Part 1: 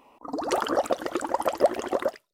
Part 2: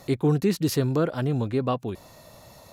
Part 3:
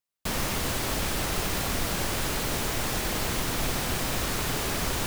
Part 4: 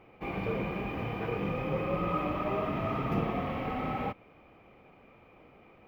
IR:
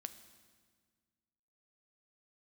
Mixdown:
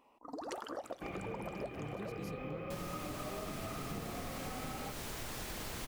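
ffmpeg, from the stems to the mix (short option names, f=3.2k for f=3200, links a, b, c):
-filter_complex "[0:a]volume=-13.5dB,asplit=2[a][b];[b]volume=-7dB[c];[1:a]adelay=1550,volume=-17.5dB[d];[2:a]adelay=2450,volume=-9dB[e];[3:a]bandreject=f=940:w=6.9,adelay=800,volume=-2dB[f];[4:a]atrim=start_sample=2205[g];[c][g]afir=irnorm=-1:irlink=0[h];[a][d][e][f][h]amix=inputs=5:normalize=0,acompressor=threshold=-39dB:ratio=6"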